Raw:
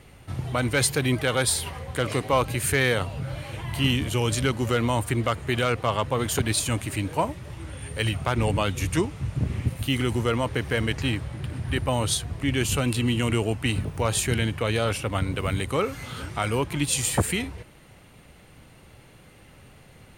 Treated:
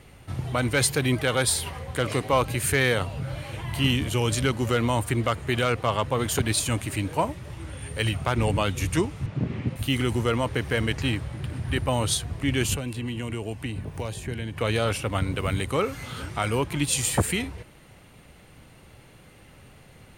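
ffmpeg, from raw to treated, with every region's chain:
-filter_complex "[0:a]asettb=1/sr,asplit=3[s0][s1][s2];[s0]atrim=end=9.264[s3];[s1]atrim=start=9.26:end=9.76,asetpts=PTS-STARTPTS,afade=t=in:d=0.004:c=qsin,afade=t=out:st=0.496:d=0.004:c=qsin,highpass=180,lowpass=4100,lowshelf=f=430:g=6[s4];[s2]atrim=start=9.756[s5];[s3][s4]acrossfade=d=0.004:c1=hsin:c2=qsin[s6];[s6][s5]acrossfade=d=0.004:c1=qsin:c2=hsin,asettb=1/sr,asplit=3[s7][s8][s9];[s7]atrim=end=12.744[s10];[s8]atrim=start=12.74:end=14.57,asetpts=PTS-STARTPTS,afade=t=in:d=0.004:c=qsin,afade=t=out:st=1.826:d=0.004:c=qsin,bandreject=f=1300:w=8.6,acrossover=split=660|2100[s11][s12][s13];[s11]acompressor=threshold=0.0316:ratio=4[s14];[s12]acompressor=threshold=0.00708:ratio=4[s15];[s13]acompressor=threshold=0.00631:ratio=4[s16];[s14][s15][s16]amix=inputs=3:normalize=0[s17];[s9]atrim=start=14.566[s18];[s10][s17]acrossfade=d=0.004:c1=hsin:c2=qsin[s19];[s19][s18]acrossfade=d=0.004:c1=qsin:c2=hsin"

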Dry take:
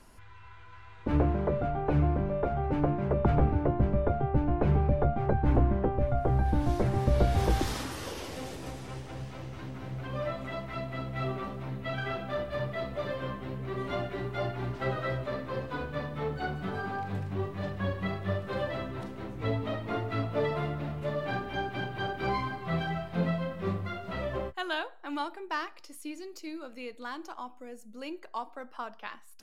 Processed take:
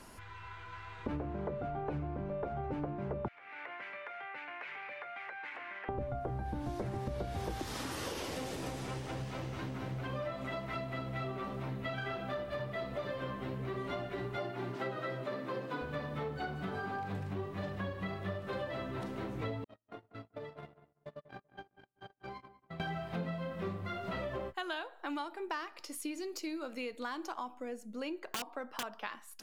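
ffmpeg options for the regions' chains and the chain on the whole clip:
-filter_complex "[0:a]asettb=1/sr,asplit=3[s0][s1][s2];[s0]atrim=end=3.284[s3];[s1]atrim=start=3.28:end=5.89,asetpts=PTS-STARTPTS,afade=t=in:d=0.004:c=qsin,afade=t=out:st=2.606:d=0.004:c=qsin,highpass=f=2100:t=q:w=3.1,aemphasis=mode=reproduction:type=50fm,acompressor=threshold=0.00562:ratio=12:attack=3.2:release=140:knee=1:detection=peak[s4];[s2]atrim=start=5.886[s5];[s3][s4]acrossfade=d=0.004:c1=hsin:c2=qsin[s6];[s6][s5]acrossfade=d=0.004:c1=qsin:c2=hsin,asettb=1/sr,asplit=3[s7][s8][s9];[s7]atrim=end=14.374[s10];[s8]atrim=start=14.37:end=15.82,asetpts=PTS-STARTPTS,afade=t=in:d=0.004:c=qsin,afade=t=out:st=1.446:d=0.004:c=qsin,highpass=f=130:w=0.5412,highpass=f=130:w=1.3066,equalizer=f=340:w=4.9:g=5[s11];[s9]atrim=start=15.816[s12];[s10][s11]acrossfade=d=0.004:c1=hsin:c2=qsin[s13];[s13][s12]acrossfade=d=0.004:c1=qsin:c2=hsin,asettb=1/sr,asplit=3[s14][s15][s16];[s14]atrim=end=19.644[s17];[s15]atrim=start=19.64:end=22.8,asetpts=PTS-STARTPTS,afade=t=in:d=0.004:c=qsin,afade=t=out:st=3.156:d=0.004:c=qsin,agate=range=0.00126:threshold=0.0355:ratio=16:release=100:detection=peak,acompressor=threshold=0.00501:ratio=10:attack=3.2:release=140:knee=1:detection=peak,asplit=2[s18][s19];[s19]adelay=192,lowpass=f=1500:p=1,volume=0.211,asplit=2[s20][s21];[s21]adelay=192,lowpass=f=1500:p=1,volume=0.18[s22];[s18][s20][s22]amix=inputs=3:normalize=0,atrim=end_sample=139356[s23];[s16]atrim=start=22.796[s24];[s17][s23]acrossfade=d=0.004:c1=hsin:c2=qsin[s25];[s25][s24]acrossfade=d=0.004:c1=qsin:c2=hsin,asettb=1/sr,asplit=3[s26][s27][s28];[s26]atrim=end=27.544[s29];[s27]atrim=start=27.54:end=28.83,asetpts=PTS-STARTPTS,afade=t=in:d=0.004:c=qsin,afade=t=out:st=1.286:d=0.004:c=qsin,highshelf=f=5800:g=-8,aeval=exprs='(mod(31.6*val(0)+1,2)-1)/31.6':c=same[s30];[s28]atrim=start=28.826[s31];[s29][s30]acrossfade=d=0.004:c1=hsin:c2=qsin[s32];[s32][s31]acrossfade=d=0.004:c1=qsin:c2=hsin,lowshelf=f=64:g=-11,acompressor=threshold=0.00891:ratio=6,volume=1.78"

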